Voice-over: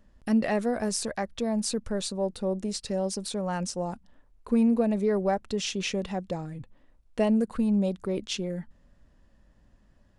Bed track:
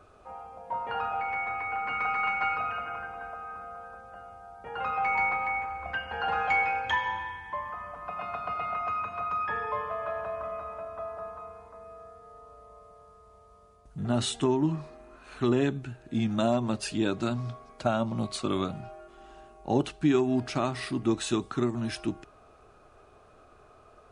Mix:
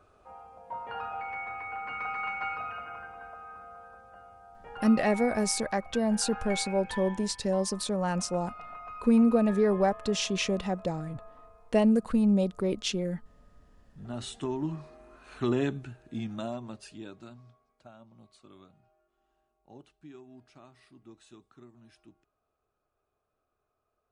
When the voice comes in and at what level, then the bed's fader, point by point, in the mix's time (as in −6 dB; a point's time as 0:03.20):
4.55 s, +1.0 dB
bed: 0:04.64 −5.5 dB
0:05.15 −12 dB
0:13.98 −12 dB
0:15.05 −2.5 dB
0:15.75 −2.5 dB
0:17.92 −25.5 dB